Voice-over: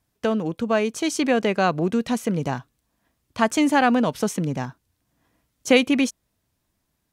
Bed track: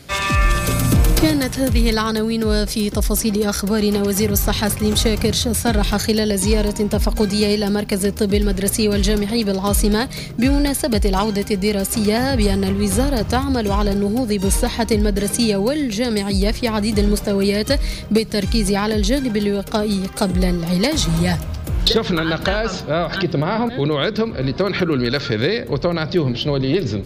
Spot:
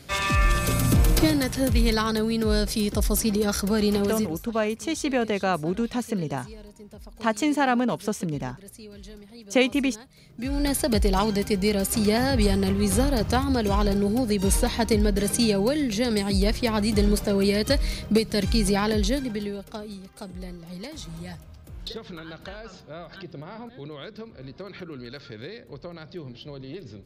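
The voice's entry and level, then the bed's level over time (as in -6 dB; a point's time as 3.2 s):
3.85 s, -4.0 dB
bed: 4.05 s -5 dB
4.46 s -26.5 dB
10.15 s -26.5 dB
10.7 s -4.5 dB
18.95 s -4.5 dB
20 s -20 dB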